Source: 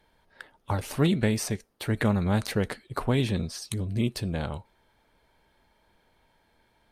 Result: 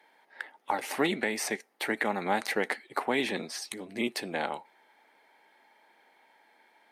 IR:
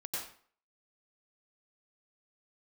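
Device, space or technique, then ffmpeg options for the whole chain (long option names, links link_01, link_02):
laptop speaker: -af "highpass=frequency=260:width=0.5412,highpass=frequency=260:width=1.3066,equalizer=frequency=810:width_type=o:width=0.36:gain=9,equalizer=frequency=2000:width_type=o:width=0.6:gain=10.5,alimiter=limit=-15dB:level=0:latency=1:release=253"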